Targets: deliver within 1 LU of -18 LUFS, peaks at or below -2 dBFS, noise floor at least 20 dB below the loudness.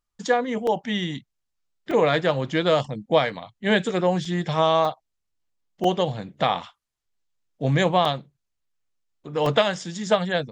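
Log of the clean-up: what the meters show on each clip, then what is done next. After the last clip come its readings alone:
dropouts 7; longest dropout 2.9 ms; loudness -23.5 LUFS; peak -4.5 dBFS; loudness target -18.0 LUFS
-> interpolate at 0.67/1.91/4.25/4.85/5.84/8.05/9.46, 2.9 ms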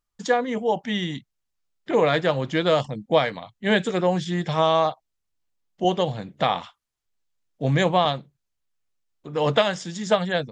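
dropouts 0; loudness -23.5 LUFS; peak -4.5 dBFS; loudness target -18.0 LUFS
-> gain +5.5 dB; limiter -2 dBFS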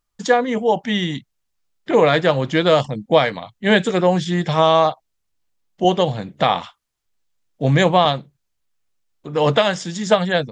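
loudness -18.0 LUFS; peak -2.0 dBFS; noise floor -74 dBFS

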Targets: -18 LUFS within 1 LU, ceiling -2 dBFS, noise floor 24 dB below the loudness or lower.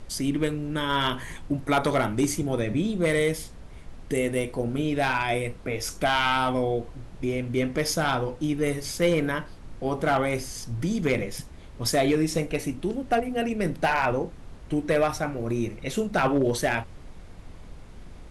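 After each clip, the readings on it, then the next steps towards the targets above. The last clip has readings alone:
clipped 0.4%; flat tops at -15.0 dBFS; noise floor -44 dBFS; noise floor target -51 dBFS; loudness -26.5 LUFS; peak -15.0 dBFS; loudness target -18.0 LUFS
-> clip repair -15 dBFS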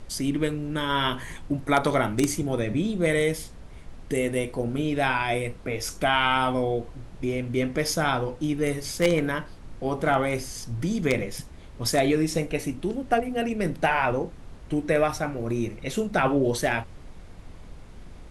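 clipped 0.0%; noise floor -44 dBFS; noise floor target -50 dBFS
-> noise print and reduce 6 dB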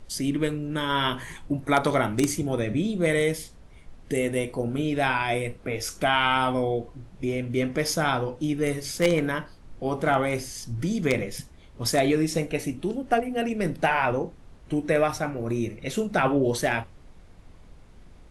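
noise floor -49 dBFS; noise floor target -50 dBFS
-> noise print and reduce 6 dB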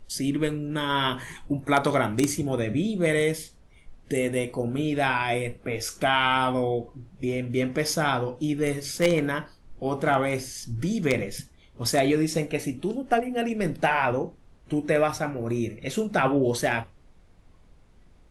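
noise floor -55 dBFS; loudness -26.0 LUFS; peak -6.0 dBFS; loudness target -18.0 LUFS
-> gain +8 dB; limiter -2 dBFS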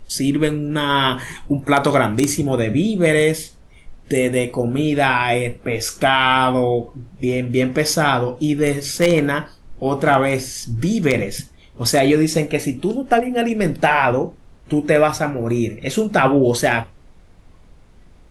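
loudness -18.5 LUFS; peak -2.0 dBFS; noise floor -47 dBFS

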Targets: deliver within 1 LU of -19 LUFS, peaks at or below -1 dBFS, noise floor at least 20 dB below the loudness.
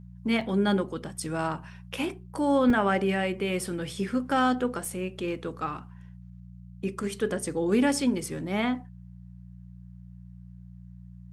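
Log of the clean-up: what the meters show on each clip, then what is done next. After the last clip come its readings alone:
dropouts 3; longest dropout 2.6 ms; hum 60 Hz; harmonics up to 180 Hz; hum level -44 dBFS; loudness -28.0 LUFS; peak -12.5 dBFS; loudness target -19.0 LUFS
-> interpolate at 0.41/2.7/4.85, 2.6 ms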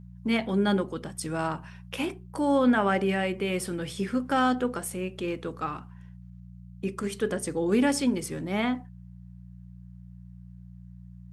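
dropouts 0; hum 60 Hz; harmonics up to 180 Hz; hum level -43 dBFS
-> de-hum 60 Hz, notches 3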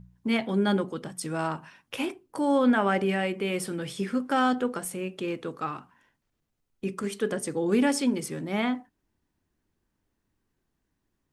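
hum none; loudness -28.0 LUFS; peak -12.5 dBFS; loudness target -19.0 LUFS
-> gain +9 dB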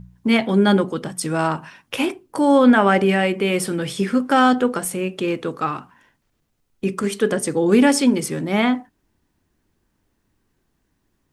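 loudness -19.0 LUFS; peak -3.5 dBFS; noise floor -70 dBFS

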